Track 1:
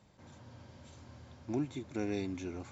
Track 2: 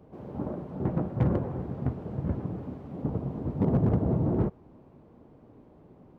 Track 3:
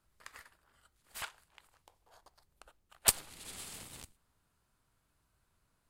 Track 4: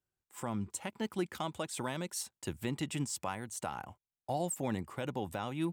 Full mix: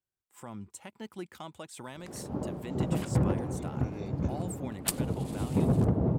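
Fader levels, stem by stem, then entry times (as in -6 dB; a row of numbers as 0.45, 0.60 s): -8.5, -1.0, -4.5, -6.0 dB; 1.85, 1.95, 1.80, 0.00 s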